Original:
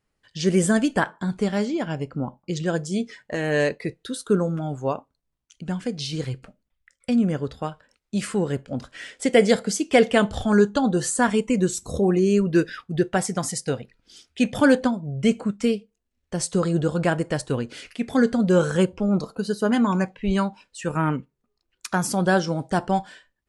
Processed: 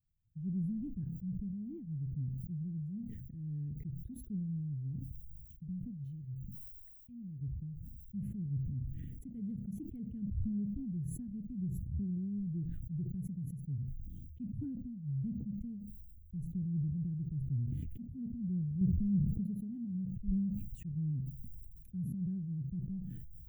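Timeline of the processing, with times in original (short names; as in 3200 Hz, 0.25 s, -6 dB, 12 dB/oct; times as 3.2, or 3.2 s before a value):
6.04–7.41 tilt shelf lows -9.5 dB, about 810 Hz
18.81–19.22 gain +6 dB
whole clip: inverse Chebyshev band-stop 540–9200 Hz, stop band 70 dB; low shelf 190 Hz -11 dB; sustainer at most 25 dB/s; gain +6 dB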